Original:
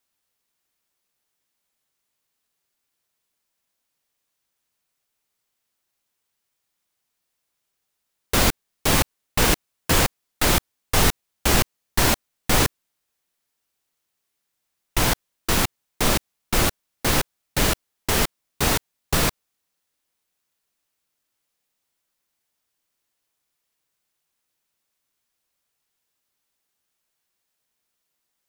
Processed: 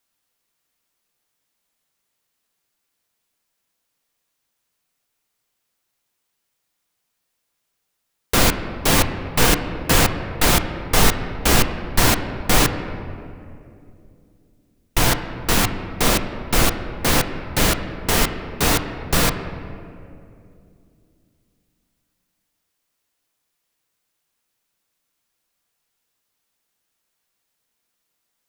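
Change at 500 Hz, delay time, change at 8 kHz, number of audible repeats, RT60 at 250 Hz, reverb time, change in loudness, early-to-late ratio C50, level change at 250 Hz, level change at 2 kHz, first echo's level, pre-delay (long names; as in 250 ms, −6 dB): +3.5 dB, no echo audible, +2.5 dB, no echo audible, 3.6 s, 2.5 s, +3.0 dB, 9.0 dB, +4.0 dB, +3.5 dB, no echo audible, 4 ms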